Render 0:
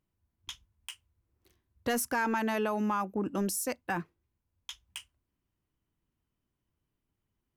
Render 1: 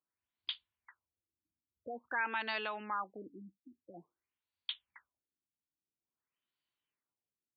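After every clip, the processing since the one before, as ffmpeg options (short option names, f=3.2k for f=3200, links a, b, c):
-af "aderivative,afftfilt=real='re*lt(b*sr/1024,320*pow(4900/320,0.5+0.5*sin(2*PI*0.49*pts/sr)))':imag='im*lt(b*sr/1024,320*pow(4900/320,0.5+0.5*sin(2*PI*0.49*pts/sr)))':win_size=1024:overlap=0.75,volume=11dB"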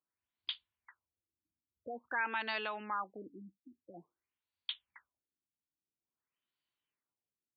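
-af anull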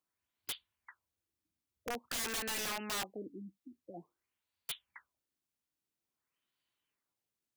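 -af "aeval=exprs='(mod(59.6*val(0)+1,2)-1)/59.6':c=same,volume=4dB"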